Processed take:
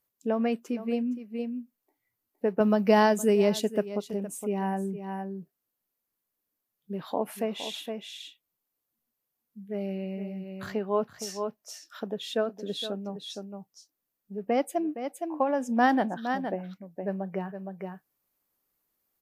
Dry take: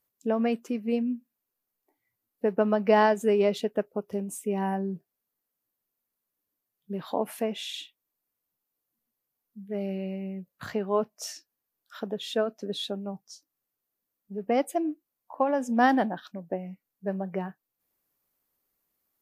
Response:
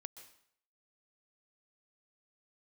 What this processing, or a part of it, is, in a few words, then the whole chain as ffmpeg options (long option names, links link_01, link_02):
ducked delay: -filter_complex "[0:a]asettb=1/sr,asplit=3[link_01][link_02][link_03];[link_01]atrim=end=2.604[link_04];[link_02]atrim=start=2.6:end=3.86,asetpts=PTS-STARTPTS,afade=type=in:duration=0.004:curve=qsin,afade=type=out:start_time=1.256:duration=0.004:curve=qsin,bass=frequency=250:gain=7,treble=frequency=4000:gain=11[link_05];[link_03]atrim=start=3.856[link_06];[link_04][link_05]acrossfade=duration=0.004:curve1=hsin:curve2=qsin[link_07];[link_07][link_06]acrossfade=duration=0.004:curve1=qsin:curve2=hsin,asplit=3[link_08][link_09][link_10];[link_09]adelay=465,volume=-5dB[link_11];[link_10]apad=whole_len=868077[link_12];[link_11][link_12]sidechaincompress=threshold=-41dB:ratio=3:attack=34:release=225[link_13];[link_08][link_13]amix=inputs=2:normalize=0,volume=-1dB"